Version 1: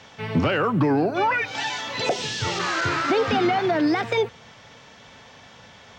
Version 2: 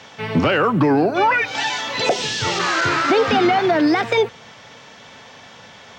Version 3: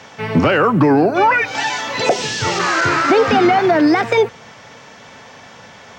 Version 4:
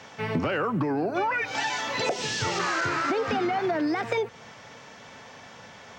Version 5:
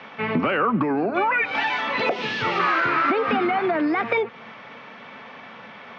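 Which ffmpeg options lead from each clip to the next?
ffmpeg -i in.wav -af "highpass=frequency=150:poles=1,volume=5.5dB" out.wav
ffmpeg -i in.wav -af "equalizer=frequency=3500:width=1.8:gain=-5.5,volume=3.5dB" out.wav
ffmpeg -i in.wav -af "acompressor=threshold=-17dB:ratio=6,volume=-6.5dB" out.wav
ffmpeg -i in.wav -af "highpass=170,equalizer=frequency=220:width_type=q:width=4:gain=6,equalizer=frequency=1200:width_type=q:width=4:gain=6,equalizer=frequency=2300:width_type=q:width=4:gain=5,lowpass=frequency=3600:width=0.5412,lowpass=frequency=3600:width=1.3066,volume=3.5dB" out.wav

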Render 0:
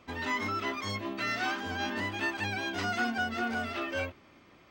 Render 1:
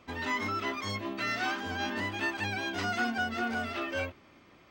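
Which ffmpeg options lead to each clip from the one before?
ffmpeg -i in.wav -af anull out.wav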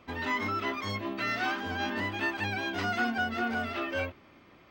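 ffmpeg -i in.wav -af "equalizer=frequency=7600:width_type=o:width=1.2:gain=-7,volume=1.5dB" out.wav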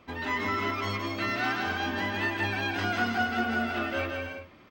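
ffmpeg -i in.wav -af "aecho=1:1:170|272|333.2|369.9|392:0.631|0.398|0.251|0.158|0.1" out.wav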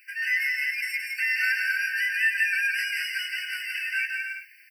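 ffmpeg -i in.wav -af "aexciter=amount=6:drive=9.6:freq=9700,afftfilt=real='re*eq(mod(floor(b*sr/1024/1500),2),1)':imag='im*eq(mod(floor(b*sr/1024/1500),2),1)':win_size=1024:overlap=0.75,volume=8.5dB" out.wav

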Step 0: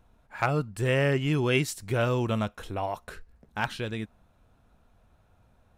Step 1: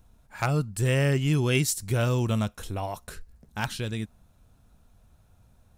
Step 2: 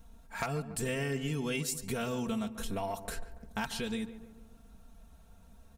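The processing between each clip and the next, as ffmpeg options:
ffmpeg -i in.wav -af "bass=frequency=250:gain=7,treble=frequency=4000:gain=12,volume=-2.5dB" out.wav
ffmpeg -i in.wav -filter_complex "[0:a]aecho=1:1:4.4:0.86,acompressor=threshold=-32dB:ratio=6,asplit=2[link_01][link_02];[link_02]adelay=143,lowpass=frequency=1600:poles=1,volume=-12dB,asplit=2[link_03][link_04];[link_04]adelay=143,lowpass=frequency=1600:poles=1,volume=0.54,asplit=2[link_05][link_06];[link_06]adelay=143,lowpass=frequency=1600:poles=1,volume=0.54,asplit=2[link_07][link_08];[link_08]adelay=143,lowpass=frequency=1600:poles=1,volume=0.54,asplit=2[link_09][link_10];[link_10]adelay=143,lowpass=frequency=1600:poles=1,volume=0.54,asplit=2[link_11][link_12];[link_12]adelay=143,lowpass=frequency=1600:poles=1,volume=0.54[link_13];[link_01][link_03][link_05][link_07][link_09][link_11][link_13]amix=inputs=7:normalize=0" out.wav

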